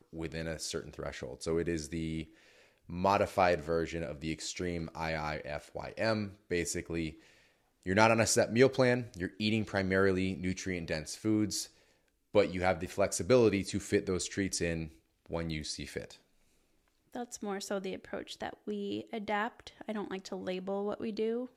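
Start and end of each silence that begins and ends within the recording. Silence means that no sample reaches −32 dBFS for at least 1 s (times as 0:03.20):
0:16.04–0:17.16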